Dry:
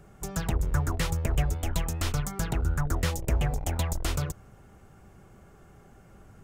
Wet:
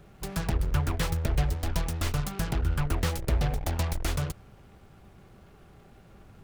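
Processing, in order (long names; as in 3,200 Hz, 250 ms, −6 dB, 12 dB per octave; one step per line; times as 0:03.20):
short delay modulated by noise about 1,200 Hz, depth 0.072 ms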